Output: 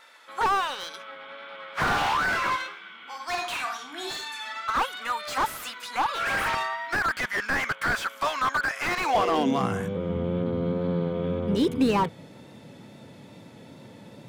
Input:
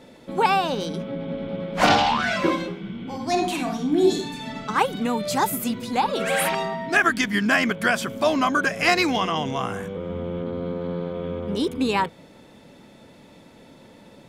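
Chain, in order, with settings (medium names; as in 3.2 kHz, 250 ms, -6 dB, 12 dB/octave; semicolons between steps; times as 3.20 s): high-pass sweep 1.3 kHz -> 110 Hz, 8.91–9.76 s; wow and flutter 26 cents; slew-rate limiter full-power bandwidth 100 Hz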